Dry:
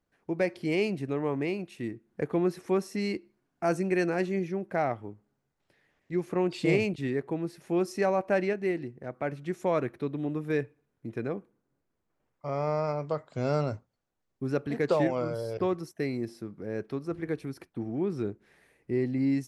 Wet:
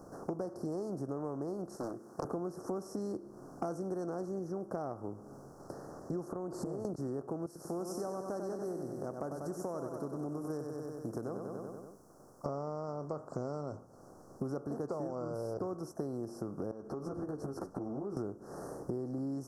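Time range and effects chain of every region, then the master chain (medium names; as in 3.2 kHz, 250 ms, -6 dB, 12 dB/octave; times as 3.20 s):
1.76–2.25 s: high-pass 1.2 kHz 6 dB/octave + loudspeaker Doppler distortion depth 0.94 ms
6.28–6.85 s: compression, threshold -39 dBFS + peaking EQ 5.4 kHz -8.5 dB 0.61 oct
7.46–12.46 s: pre-emphasis filter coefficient 0.8 + feedback delay 95 ms, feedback 53%, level -9 dB
16.71–18.17 s: compression 12:1, threshold -44 dBFS + treble shelf 7.7 kHz -11 dB + three-phase chorus
whole clip: spectral levelling over time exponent 0.6; elliptic band-stop 1.3–5.5 kHz, stop band 50 dB; compression 8:1, threshold -40 dBFS; trim +4.5 dB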